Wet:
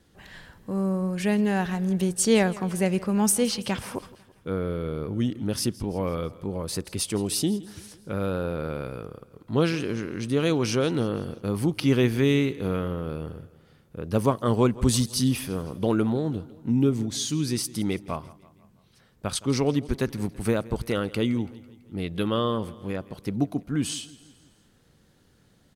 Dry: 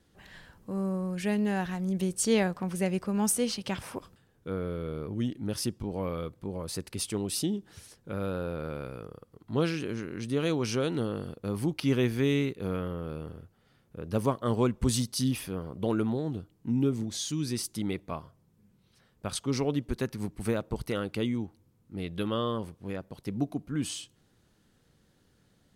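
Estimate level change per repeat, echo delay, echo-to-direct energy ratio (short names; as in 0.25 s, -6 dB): -5.5 dB, 0.166 s, -18.5 dB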